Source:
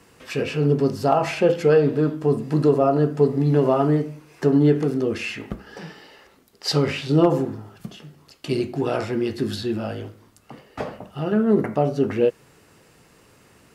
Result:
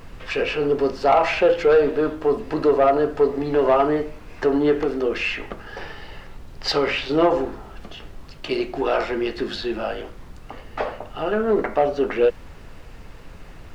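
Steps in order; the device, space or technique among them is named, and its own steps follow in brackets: aircraft cabin announcement (BPF 480–3700 Hz; soft clip -15 dBFS, distortion -17 dB; brown noise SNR 16 dB); gain +6.5 dB

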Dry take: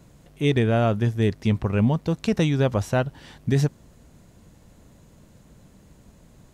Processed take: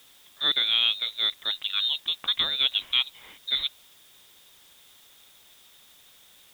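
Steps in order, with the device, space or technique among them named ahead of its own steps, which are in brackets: scrambled radio voice (BPF 310–3000 Hz; inverted band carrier 3900 Hz; white noise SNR 27 dB)

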